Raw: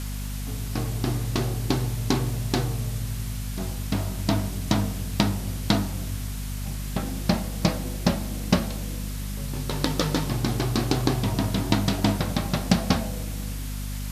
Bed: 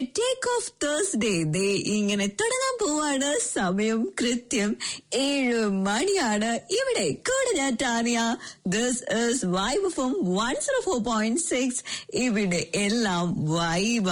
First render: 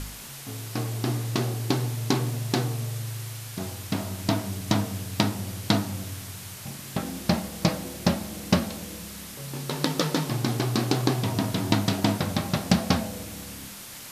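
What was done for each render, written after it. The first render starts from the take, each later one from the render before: de-hum 50 Hz, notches 5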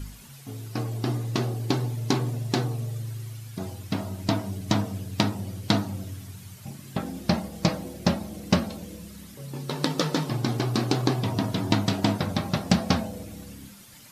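noise reduction 11 dB, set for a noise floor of -41 dBFS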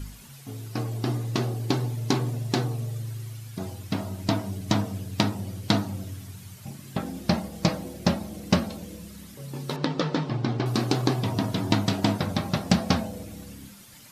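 9.76–10.66 s: distance through air 150 m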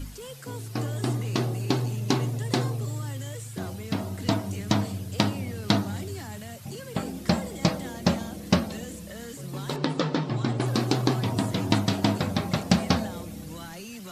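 add bed -17 dB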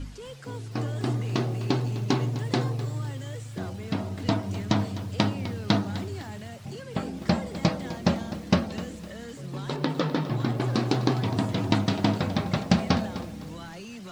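distance through air 79 m; bit-crushed delay 254 ms, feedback 35%, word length 7-bit, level -14 dB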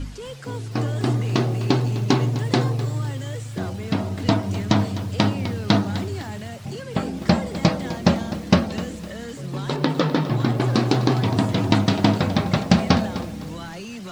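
trim +6 dB; peak limiter -1 dBFS, peak gain reduction 2.5 dB

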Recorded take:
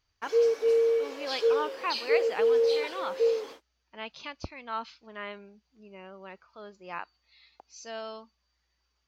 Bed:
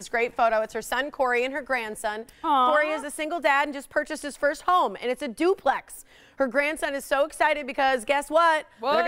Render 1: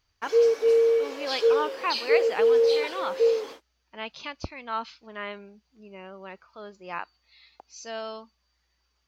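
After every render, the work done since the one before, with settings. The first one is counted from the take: trim +3.5 dB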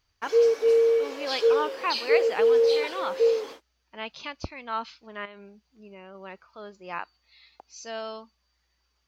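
5.25–6.15 s: compression 12:1, threshold -40 dBFS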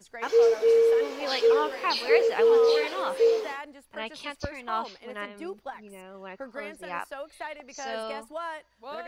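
add bed -15.5 dB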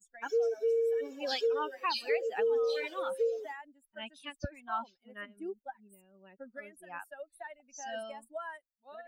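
expander on every frequency bin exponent 2; compression 3:1, threshold -29 dBFS, peak gain reduction 9.5 dB

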